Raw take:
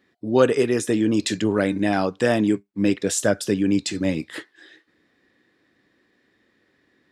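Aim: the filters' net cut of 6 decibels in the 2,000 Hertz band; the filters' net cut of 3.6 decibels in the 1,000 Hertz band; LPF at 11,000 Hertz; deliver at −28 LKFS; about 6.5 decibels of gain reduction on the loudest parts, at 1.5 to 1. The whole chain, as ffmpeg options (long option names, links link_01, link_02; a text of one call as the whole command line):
ffmpeg -i in.wav -af "lowpass=11000,equalizer=frequency=1000:width_type=o:gain=-4,equalizer=frequency=2000:width_type=o:gain=-6.5,acompressor=threshold=-31dB:ratio=1.5,volume=-0.5dB" out.wav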